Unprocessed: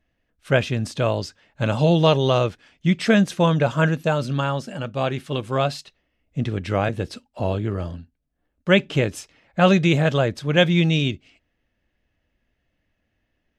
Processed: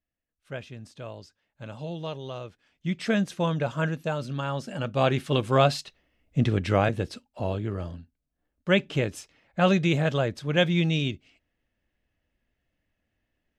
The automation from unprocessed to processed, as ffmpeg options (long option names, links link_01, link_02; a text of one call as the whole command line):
ffmpeg -i in.wav -af "volume=1.5dB,afade=type=in:start_time=2.47:duration=0.58:silence=0.316228,afade=type=in:start_time=4.42:duration=0.71:silence=0.334965,afade=type=out:start_time=6.51:duration=0.75:silence=0.446684" out.wav